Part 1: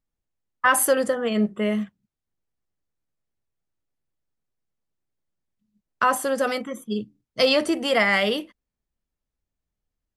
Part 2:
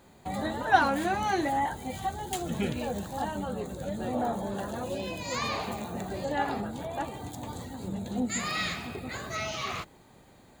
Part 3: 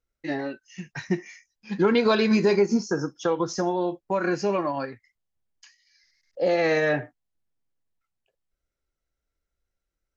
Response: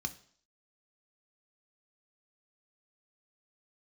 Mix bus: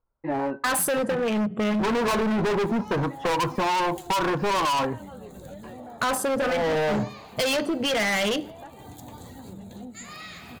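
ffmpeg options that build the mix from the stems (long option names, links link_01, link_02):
-filter_complex "[0:a]afwtdn=0.0178,volume=1.5dB,asplit=3[link_01][link_02][link_03];[link_02]volume=-10.5dB[link_04];[1:a]equalizer=frequency=14000:width_type=o:width=0.36:gain=7.5,acompressor=threshold=-37dB:ratio=6,adelay=1650,volume=-10dB[link_05];[2:a]lowpass=frequency=990:width_type=q:width=6.5,asoftclip=type=tanh:threshold=-18dB,volume=2.5dB,asplit=2[link_06][link_07];[link_07]volume=-14dB[link_08];[link_03]apad=whole_len=448430[link_09];[link_06][link_09]sidechaincompress=threshold=-25dB:ratio=8:attack=43:release=334[link_10];[3:a]atrim=start_sample=2205[link_11];[link_04][link_08]amix=inputs=2:normalize=0[link_12];[link_12][link_11]afir=irnorm=-1:irlink=0[link_13];[link_01][link_05][link_10][link_13]amix=inputs=4:normalize=0,dynaudnorm=framelen=260:gausssize=3:maxgain=9dB,asoftclip=type=hard:threshold=-18dB,acompressor=threshold=-23dB:ratio=6"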